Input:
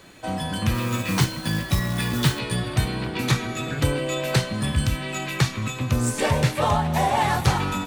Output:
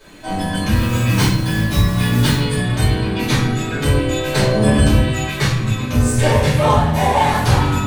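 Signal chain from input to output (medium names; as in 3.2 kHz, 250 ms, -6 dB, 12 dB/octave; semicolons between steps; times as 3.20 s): 4.39–4.99 s: peaking EQ 510 Hz +12 dB 2 oct; simulated room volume 80 m³, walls mixed, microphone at 2.7 m; trim -5.5 dB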